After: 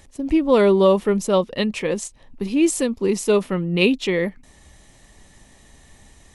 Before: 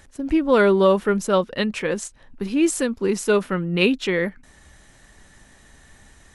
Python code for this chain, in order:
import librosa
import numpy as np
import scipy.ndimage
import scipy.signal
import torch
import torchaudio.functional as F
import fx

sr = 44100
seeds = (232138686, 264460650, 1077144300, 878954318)

y = fx.peak_eq(x, sr, hz=1500.0, db=-11.5, octaves=0.42)
y = y * 10.0 ** (1.5 / 20.0)